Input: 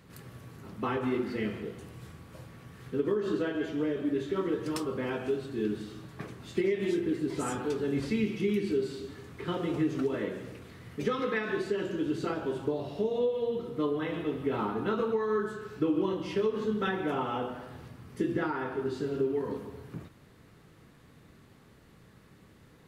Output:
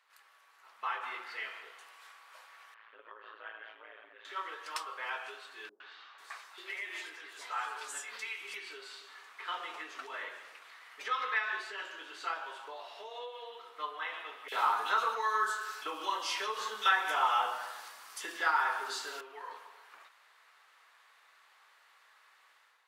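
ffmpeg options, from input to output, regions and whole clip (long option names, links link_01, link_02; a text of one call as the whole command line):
ffmpeg -i in.wav -filter_complex "[0:a]asettb=1/sr,asplit=3[link_01][link_02][link_03];[link_01]atrim=end=2.744[link_04];[link_02]atrim=start=2.74:end=4.25,asetpts=PTS-STARTPTS,afade=type=in:duration=0.004:curve=qsin,afade=type=out:start_time=1.506:duration=0.004:curve=qsin,lowpass=frequency=3100:width=0.5412,lowpass=frequency=3100:width=1.3066,acompressor=threshold=-35dB:ratio=2:attack=3.2:release=140:knee=1:detection=peak,tremolo=f=110:d=0.889[link_05];[link_03]atrim=start=4.246[link_06];[link_04][link_05]acrossfade=duration=0.004:curve1=hsin:curve2=qsin[link_07];[link_07][link_06]acrossfade=duration=0.004:curve1=qsin:curve2=hsin,asettb=1/sr,asplit=3[link_08][link_09][link_10];[link_08]atrim=end=5.694[link_11];[link_09]atrim=start=5.69:end=8.54,asetpts=PTS-STARTPTS,afade=type=in:duration=0.004:curve=qsin,afade=type=out:start_time=2.846:duration=0.004:curve=qsin,bass=frequency=250:gain=-4,treble=frequency=4000:gain=4,acrossover=split=460|4200[link_12][link_13][link_14];[link_13]adelay=110[link_15];[link_14]adelay=490[link_16];[link_12][link_15][link_16]amix=inputs=3:normalize=0,atrim=end_sample=125685[link_17];[link_10]atrim=start=8.536[link_18];[link_11][link_17]acrossfade=duration=0.004:curve1=hsin:curve2=qsin[link_19];[link_19][link_18]acrossfade=duration=0.004:curve1=qsin:curve2=hsin,asettb=1/sr,asplit=3[link_20][link_21][link_22];[link_20]atrim=end=9.114[link_23];[link_21]atrim=start=9.11:end=12.45,asetpts=PTS-STARTPTS,afade=type=in:duration=0.004:curve=qsin,afade=type=out:start_time=3.336:duration=0.004:curve=qsin,bass=frequency=250:gain=11,treble=frequency=4000:gain=0,bandreject=frequency=60:width_type=h:width=6,bandreject=frequency=120:width_type=h:width=6,bandreject=frequency=180:width_type=h:width=6,bandreject=frequency=240:width_type=h:width=6,bandreject=frequency=300:width_type=h:width=6,bandreject=frequency=360:width_type=h:width=6,bandreject=frequency=420:width_type=h:width=6,bandreject=frequency=480:width_type=h:width=6,bandreject=frequency=540:width_type=h:width=6,bandreject=frequency=600:width_type=h:width=6[link_24];[link_22]atrim=start=12.446[link_25];[link_23][link_24]acrossfade=duration=0.004:curve1=hsin:curve2=qsin[link_26];[link_26][link_25]acrossfade=duration=0.004:curve1=qsin:curve2=hsin,asettb=1/sr,asplit=3[link_27][link_28][link_29];[link_27]atrim=end=14.484[link_30];[link_28]atrim=start=14.48:end=19.21,asetpts=PTS-STARTPTS,afade=type=in:duration=0.004:curve=qsin,afade=type=out:start_time=4.726:duration=0.004:curve=qsin,bass=frequency=250:gain=11,treble=frequency=4000:gain=12,acontrast=37,acrossover=split=2600[link_31][link_32];[link_31]adelay=40[link_33];[link_33][link_32]amix=inputs=2:normalize=0,atrim=end_sample=208593[link_34];[link_29]atrim=start=19.206[link_35];[link_30][link_34]acrossfade=duration=0.004:curve1=hsin:curve2=qsin[link_36];[link_36][link_35]acrossfade=duration=0.004:curve1=qsin:curve2=hsin,highpass=frequency=890:width=0.5412,highpass=frequency=890:width=1.3066,highshelf=frequency=6000:gain=-9.5,dynaudnorm=framelen=550:gausssize=3:maxgain=9dB,volume=-5.5dB" out.wav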